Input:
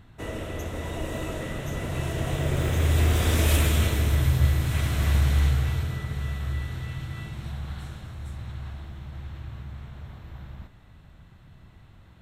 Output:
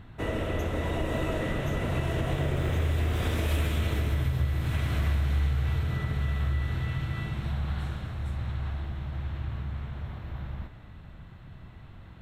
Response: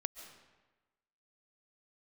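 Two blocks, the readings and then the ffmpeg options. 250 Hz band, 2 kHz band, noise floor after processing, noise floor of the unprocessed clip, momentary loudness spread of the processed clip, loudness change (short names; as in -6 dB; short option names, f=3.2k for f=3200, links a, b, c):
-1.0 dB, -2.0 dB, -47 dBFS, -52 dBFS, 17 LU, -4.0 dB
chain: -filter_complex "[0:a]acompressor=threshold=-28dB:ratio=6,asplit=2[a][b];[1:a]atrim=start_sample=2205,lowpass=4.3k[c];[b][c]afir=irnorm=-1:irlink=0,volume=3.5dB[d];[a][d]amix=inputs=2:normalize=0,volume=-3dB"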